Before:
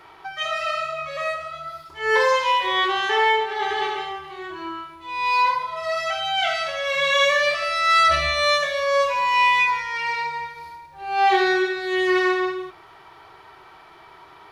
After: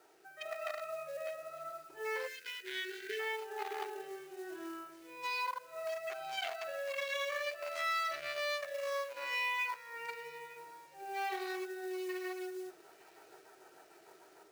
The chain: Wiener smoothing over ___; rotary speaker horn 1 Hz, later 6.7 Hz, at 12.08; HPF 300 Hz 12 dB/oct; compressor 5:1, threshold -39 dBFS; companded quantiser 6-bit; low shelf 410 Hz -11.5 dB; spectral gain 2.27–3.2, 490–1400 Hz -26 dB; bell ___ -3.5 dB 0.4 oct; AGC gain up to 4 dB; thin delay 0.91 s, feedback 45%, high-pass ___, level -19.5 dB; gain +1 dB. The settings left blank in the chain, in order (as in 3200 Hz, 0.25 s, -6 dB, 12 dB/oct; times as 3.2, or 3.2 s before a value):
41 samples, 3400 Hz, 2200 Hz